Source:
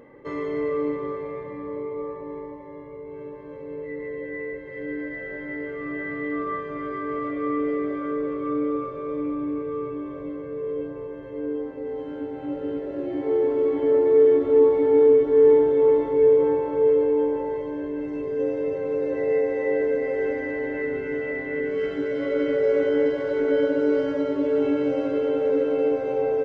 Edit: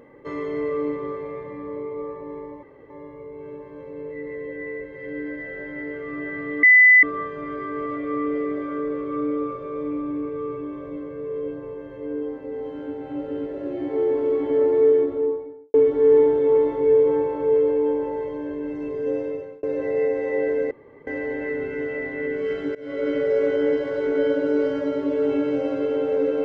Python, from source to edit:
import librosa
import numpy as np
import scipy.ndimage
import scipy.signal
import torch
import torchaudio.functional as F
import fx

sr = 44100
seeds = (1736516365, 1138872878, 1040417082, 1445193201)

y = fx.studio_fade_out(x, sr, start_s=14.05, length_s=1.02)
y = fx.edit(y, sr, fx.insert_room_tone(at_s=2.63, length_s=0.27),
    fx.insert_tone(at_s=6.36, length_s=0.4, hz=2000.0, db=-8.5),
    fx.fade_out_span(start_s=18.53, length_s=0.43),
    fx.room_tone_fill(start_s=20.04, length_s=0.36),
    fx.fade_in_from(start_s=22.08, length_s=0.43, curve='qsin', floor_db=-22.5), tone=tone)